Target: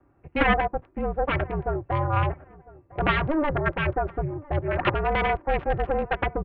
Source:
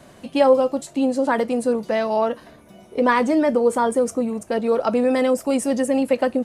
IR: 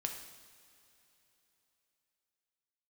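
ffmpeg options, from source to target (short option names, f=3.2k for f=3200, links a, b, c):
-filter_complex "[0:a]asplit=3[a][b][c];[a]afade=t=out:st=4.75:d=0.02[d];[b]equalizer=f=125:t=o:w=1:g=-4,equalizer=f=1k:t=o:w=1:g=6,equalizer=f=2k:t=o:w=1:g=5,afade=t=in:st=4.75:d=0.02,afade=t=out:st=5.79:d=0.02[e];[c]afade=t=in:st=5.79:d=0.02[f];[d][e][f]amix=inputs=3:normalize=0,aeval=exprs='0.631*(cos(1*acos(clip(val(0)/0.631,-1,1)))-cos(1*PI/2))+0.251*(cos(3*acos(clip(val(0)/0.631,-1,1)))-cos(3*PI/2))+0.1*(cos(8*acos(clip(val(0)/0.631,-1,1)))-cos(8*PI/2))':c=same,aecho=1:1:4.7:0.49,aecho=1:1:1004|2008:0.0794|0.0214,acrossover=split=150|840|2000[g][h][i][j];[j]acrusher=bits=4:mix=0:aa=0.000001[k];[g][h][i][k]amix=inputs=4:normalize=0,highpass=f=190:t=q:w=0.5412,highpass=f=190:t=q:w=1.307,lowpass=f=3.1k:t=q:w=0.5176,lowpass=f=3.1k:t=q:w=0.7071,lowpass=f=3.1k:t=q:w=1.932,afreqshift=-310"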